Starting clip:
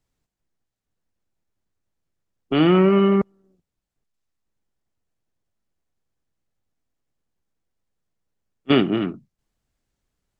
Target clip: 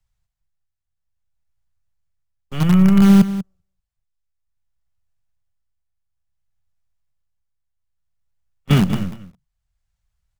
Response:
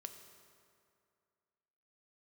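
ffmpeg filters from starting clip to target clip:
-filter_complex "[0:a]tremolo=f=0.59:d=0.51,acrossover=split=100|510[s0][s1][s2];[s1]acrusher=bits=4:dc=4:mix=0:aa=0.000001[s3];[s0][s3][s2]amix=inputs=3:normalize=0,lowshelf=f=240:t=q:w=3:g=9.5,aecho=1:1:191:0.2,volume=0.841"

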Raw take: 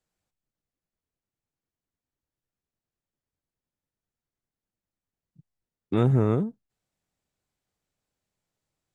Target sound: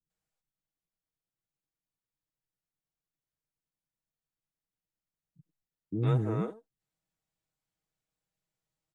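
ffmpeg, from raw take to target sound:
-filter_complex "[0:a]aecho=1:1:6.3:0.51,acrossover=split=360[s0][s1];[s1]adelay=100[s2];[s0][s2]amix=inputs=2:normalize=0,volume=0.447"

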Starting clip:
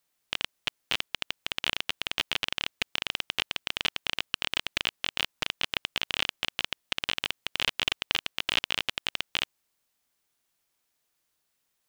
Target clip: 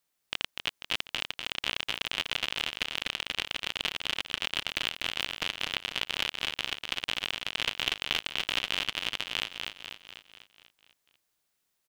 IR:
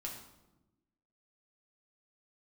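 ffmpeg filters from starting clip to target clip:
-af "aecho=1:1:246|492|738|984|1230|1476|1722:0.562|0.304|0.164|0.0885|0.0478|0.0258|0.0139,volume=0.75"

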